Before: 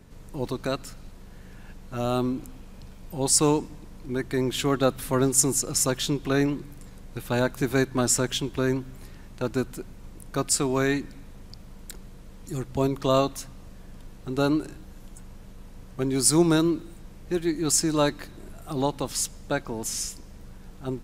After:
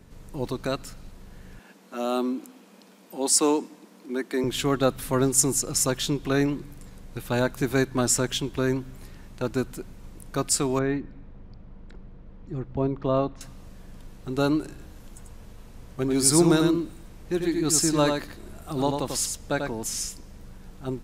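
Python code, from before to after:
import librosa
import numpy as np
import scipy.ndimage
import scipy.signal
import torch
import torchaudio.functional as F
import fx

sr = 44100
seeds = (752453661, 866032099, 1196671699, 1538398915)

y = fx.steep_highpass(x, sr, hz=200.0, slope=48, at=(1.59, 4.44))
y = fx.spacing_loss(y, sr, db_at_10k=38, at=(10.79, 13.41))
y = fx.echo_single(y, sr, ms=93, db=-5.0, at=(14.69, 19.75))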